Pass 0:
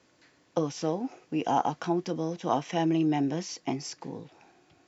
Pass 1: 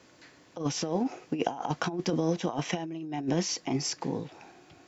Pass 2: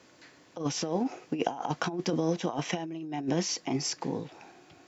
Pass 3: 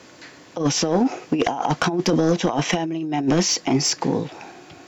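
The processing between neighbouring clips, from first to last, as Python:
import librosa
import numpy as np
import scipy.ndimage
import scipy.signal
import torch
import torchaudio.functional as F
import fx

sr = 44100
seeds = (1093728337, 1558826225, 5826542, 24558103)

y1 = fx.over_compress(x, sr, threshold_db=-31.0, ratio=-0.5)
y1 = F.gain(torch.from_numpy(y1), 2.5).numpy()
y2 = fx.low_shelf(y1, sr, hz=87.0, db=-6.5)
y3 = fx.fold_sine(y2, sr, drive_db=8, ceiling_db=-11.0)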